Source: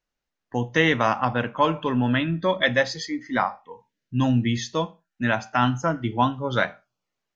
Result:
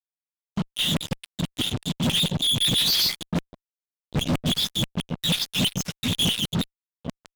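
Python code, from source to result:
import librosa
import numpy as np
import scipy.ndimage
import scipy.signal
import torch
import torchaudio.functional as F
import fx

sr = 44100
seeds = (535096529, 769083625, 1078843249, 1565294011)

y = fx.spec_dropout(x, sr, seeds[0], share_pct=29)
y = fx.peak_eq(y, sr, hz=240.0, db=6.5, octaves=1.5)
y = y + 10.0 ** (-15.5 / 20.0) * np.pad(y, (int(784 * sr / 1000.0), 0))[:len(y)]
y = fx.filter_lfo_lowpass(y, sr, shape='saw_up', hz=0.31, low_hz=320.0, high_hz=1800.0, q=0.7)
y = fx.high_shelf_res(y, sr, hz=2700.0, db=8.5, q=3.0)
y = fx.whisperise(y, sr, seeds[1])
y = scipy.signal.sosfilt(scipy.signal.cheby2(4, 70, [450.0, 1200.0], 'bandstop', fs=sr, output='sos'), y)
y = fx.doubler(y, sr, ms=12.0, db=-8.5)
y = fx.filter_lfo_highpass(y, sr, shape='saw_down', hz=6.2, low_hz=340.0, high_hz=2800.0, q=2.3)
y = fx.fuzz(y, sr, gain_db=59.0, gate_db=-60.0)
y = y * 10.0 ** (-6.5 / 20.0)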